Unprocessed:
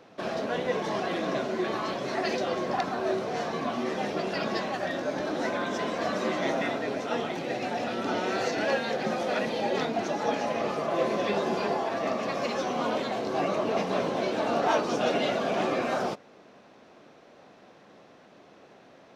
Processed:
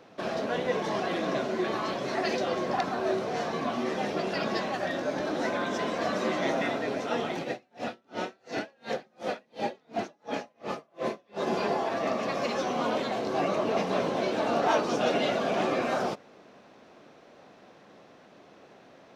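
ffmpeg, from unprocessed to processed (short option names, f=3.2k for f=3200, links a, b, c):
-filter_complex "[0:a]asplit=3[a][b][c];[a]afade=t=out:st=7.43:d=0.02[d];[b]aeval=exprs='val(0)*pow(10,-40*(0.5-0.5*cos(2*PI*2.8*n/s))/20)':c=same,afade=t=in:st=7.43:d=0.02,afade=t=out:st=11.46:d=0.02[e];[c]afade=t=in:st=11.46:d=0.02[f];[d][e][f]amix=inputs=3:normalize=0"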